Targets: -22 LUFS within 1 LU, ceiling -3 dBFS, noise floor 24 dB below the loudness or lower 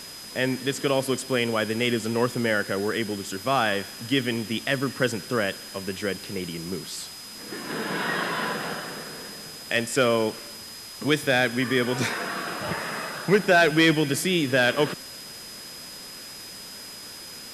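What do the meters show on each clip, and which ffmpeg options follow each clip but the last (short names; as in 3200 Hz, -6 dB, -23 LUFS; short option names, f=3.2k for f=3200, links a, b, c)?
steady tone 5000 Hz; tone level -41 dBFS; noise floor -41 dBFS; noise floor target -49 dBFS; loudness -25.0 LUFS; peak -9.0 dBFS; loudness target -22.0 LUFS
-> -af "bandreject=f=5k:w=30"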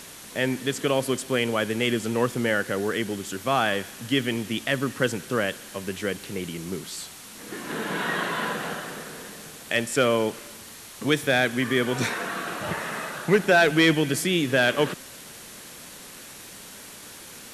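steady tone none; noise floor -43 dBFS; noise floor target -49 dBFS
-> -af "afftdn=nr=6:nf=-43"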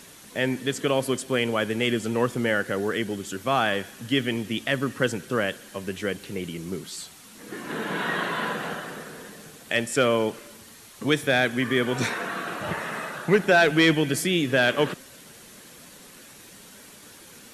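noise floor -48 dBFS; noise floor target -49 dBFS
-> -af "afftdn=nr=6:nf=-48"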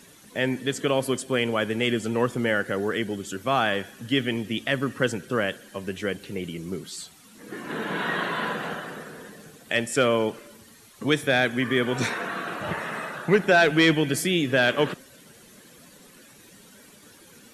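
noise floor -52 dBFS; loudness -25.0 LUFS; peak -9.0 dBFS; loudness target -22.0 LUFS
-> -af "volume=3dB"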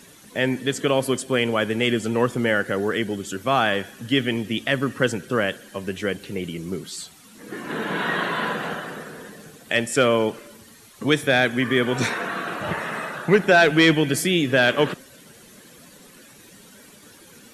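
loudness -22.0 LUFS; peak -6.0 dBFS; noise floor -49 dBFS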